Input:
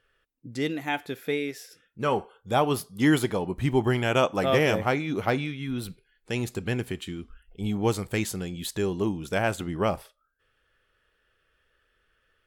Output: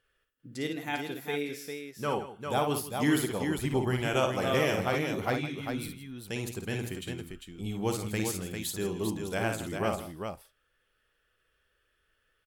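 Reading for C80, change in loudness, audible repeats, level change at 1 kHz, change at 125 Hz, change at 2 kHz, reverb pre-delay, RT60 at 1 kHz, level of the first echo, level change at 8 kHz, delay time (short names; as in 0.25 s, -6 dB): none, -4.5 dB, 3, -4.5 dB, -4.5 dB, -4.0 dB, none, none, -6.0 dB, +0.5 dB, 55 ms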